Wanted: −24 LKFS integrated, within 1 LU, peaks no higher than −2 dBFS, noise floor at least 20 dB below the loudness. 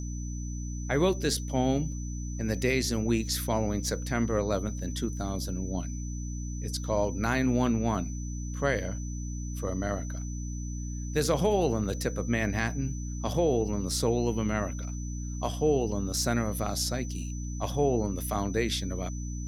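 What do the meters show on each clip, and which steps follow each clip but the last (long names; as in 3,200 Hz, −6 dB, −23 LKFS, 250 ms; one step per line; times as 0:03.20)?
mains hum 60 Hz; hum harmonics up to 300 Hz; level of the hum −32 dBFS; interfering tone 6,000 Hz; level of the tone −45 dBFS; integrated loudness −30.0 LKFS; sample peak −13.5 dBFS; target loudness −24.0 LKFS
→ mains-hum notches 60/120/180/240/300 Hz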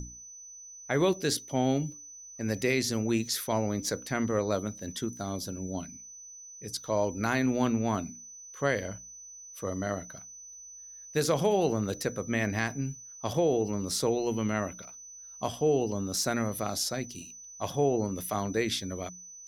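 mains hum none found; interfering tone 6,000 Hz; level of the tone −45 dBFS
→ notch filter 6,000 Hz, Q 30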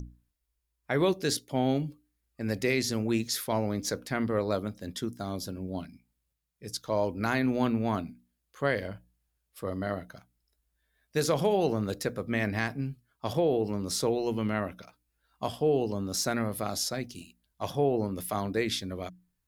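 interfering tone none found; integrated loudness −30.5 LKFS; sample peak −13.5 dBFS; target loudness −24.0 LKFS
→ level +6.5 dB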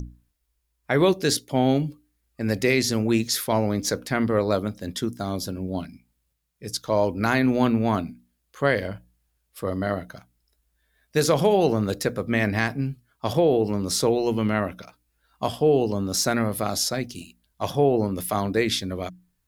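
integrated loudness −24.0 LKFS; sample peak −7.0 dBFS; background noise floor −74 dBFS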